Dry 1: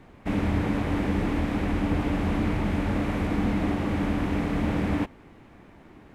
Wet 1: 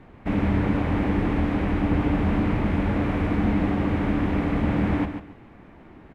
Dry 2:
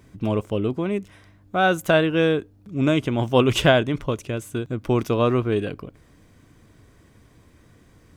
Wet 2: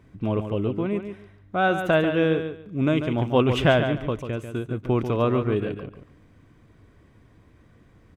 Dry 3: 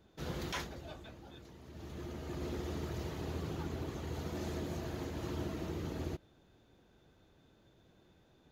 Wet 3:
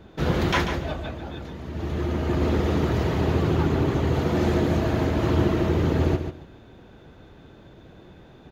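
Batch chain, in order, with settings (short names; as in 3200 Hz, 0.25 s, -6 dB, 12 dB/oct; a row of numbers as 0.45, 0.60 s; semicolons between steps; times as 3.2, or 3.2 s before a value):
tone controls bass +1 dB, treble -11 dB; on a send: feedback echo 0.142 s, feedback 21%, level -8.5 dB; on the sum: match loudness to -24 LUFS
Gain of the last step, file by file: +2.0, -2.5, +17.0 dB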